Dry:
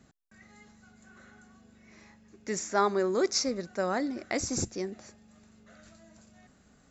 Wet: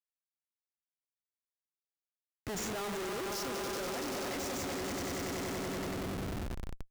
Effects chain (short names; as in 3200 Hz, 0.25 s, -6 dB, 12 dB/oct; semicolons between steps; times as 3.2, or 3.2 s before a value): swelling echo 95 ms, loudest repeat 5, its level -8.5 dB; Schmitt trigger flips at -39 dBFS; gain -6.5 dB